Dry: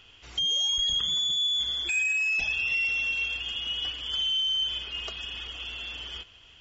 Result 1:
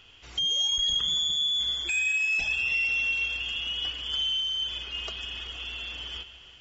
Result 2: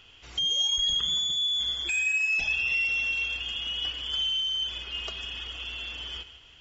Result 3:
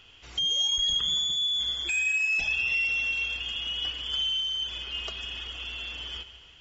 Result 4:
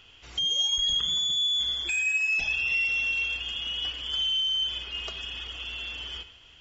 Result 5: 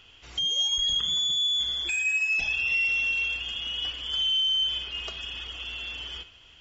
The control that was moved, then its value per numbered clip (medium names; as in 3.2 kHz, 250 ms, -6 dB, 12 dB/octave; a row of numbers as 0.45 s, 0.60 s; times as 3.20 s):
gated-style reverb, gate: 530 ms, 210 ms, 320 ms, 140 ms, 90 ms